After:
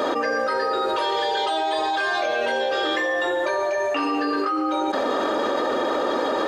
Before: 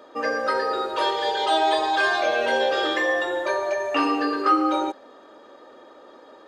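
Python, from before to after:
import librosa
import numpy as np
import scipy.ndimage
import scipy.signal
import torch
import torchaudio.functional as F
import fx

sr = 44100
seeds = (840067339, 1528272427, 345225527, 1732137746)

y = fx.env_flatten(x, sr, amount_pct=100)
y = y * 10.0 ** (-7.5 / 20.0)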